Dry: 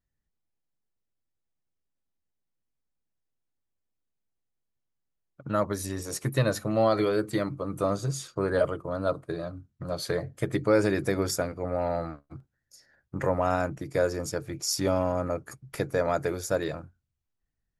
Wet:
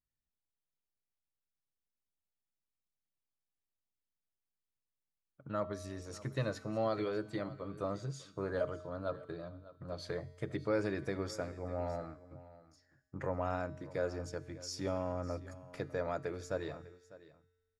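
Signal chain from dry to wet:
low-pass filter 5,500 Hz 12 dB per octave
tuned comb filter 89 Hz, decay 1.6 s, harmonics odd, mix 60%
on a send: single-tap delay 600 ms −18 dB
on the sum: level −3 dB

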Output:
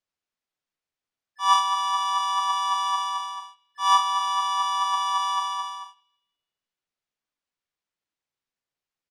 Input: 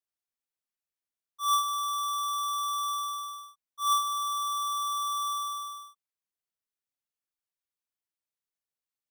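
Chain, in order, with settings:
flanger 0.41 Hz, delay 3.2 ms, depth 4.8 ms, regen +79%
pitch-shifted copies added −7 semitones −13 dB, −3 semitones −2 dB, +7 semitones −16 dB
high-frequency loss of the air 86 metres
on a send: feedback echo with a band-pass in the loop 162 ms, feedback 43%, band-pass 2,900 Hz, level −23.5 dB
on the sum: level +9 dB

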